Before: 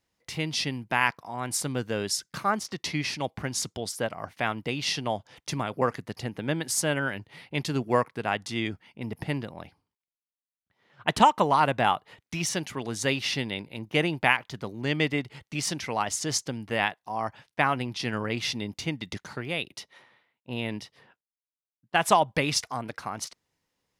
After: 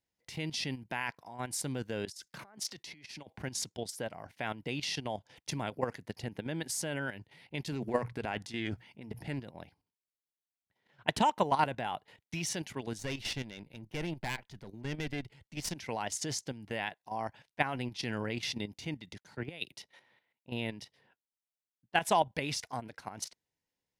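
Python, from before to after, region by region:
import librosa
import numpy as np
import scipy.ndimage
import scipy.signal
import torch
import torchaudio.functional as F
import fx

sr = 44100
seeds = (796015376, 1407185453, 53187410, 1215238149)

y = fx.chain(x, sr, fx.over_compress(threshold_db=-39.0, ratio=-1.0),
    fx.low_shelf(hz=260.0, db=-5.5),
    fx.band_widen(depth_pct=100), at=(2.05, 3.38))
y = fx.chain(y, sr, fx.hum_notches(base_hz=60, count=2),
    fx.transient(attack_db=-2, sustain_db=8),
    fx.doppler_dist(depth_ms=0.11), at=(7.72, 9.39))
y = fx.chain(y, sr, fx.tube_stage(drive_db=23.0, bias=0.7),
    fx.low_shelf(hz=110.0, db=7.5), at=(12.98, 15.76))
y = fx.chain(y, sr, fx.over_compress(threshold_db=-33.0, ratio=-0.5),
    fx.band_widen(depth_pct=100), at=(19.18, 19.71))
y = fx.peak_eq(y, sr, hz=1200.0, db=-10.0, octaves=0.24)
y = fx.level_steps(y, sr, step_db=11)
y = y * librosa.db_to_amplitude(-2.5)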